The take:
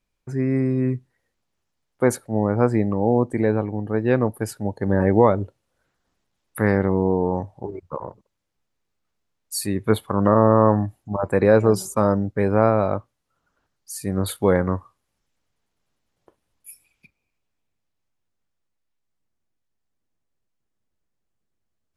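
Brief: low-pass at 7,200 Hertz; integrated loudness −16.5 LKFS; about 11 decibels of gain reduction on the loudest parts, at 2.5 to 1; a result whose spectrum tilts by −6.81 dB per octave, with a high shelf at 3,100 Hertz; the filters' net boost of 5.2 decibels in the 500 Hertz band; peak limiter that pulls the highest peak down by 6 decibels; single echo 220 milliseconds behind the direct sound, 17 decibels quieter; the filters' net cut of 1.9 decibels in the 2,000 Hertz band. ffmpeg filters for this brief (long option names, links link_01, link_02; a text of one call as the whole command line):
ffmpeg -i in.wav -af "lowpass=7200,equalizer=frequency=500:width_type=o:gain=6,equalizer=frequency=2000:width_type=o:gain=-4,highshelf=frequency=3100:gain=3.5,acompressor=threshold=-23dB:ratio=2.5,alimiter=limit=-14dB:level=0:latency=1,aecho=1:1:220:0.141,volume=11dB" out.wav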